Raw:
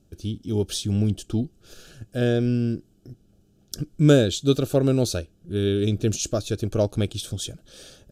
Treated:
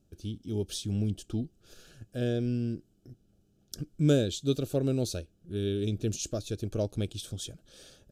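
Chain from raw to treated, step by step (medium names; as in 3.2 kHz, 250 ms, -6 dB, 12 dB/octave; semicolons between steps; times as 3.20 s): dynamic bell 1.2 kHz, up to -6 dB, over -40 dBFS, Q 1; trim -7.5 dB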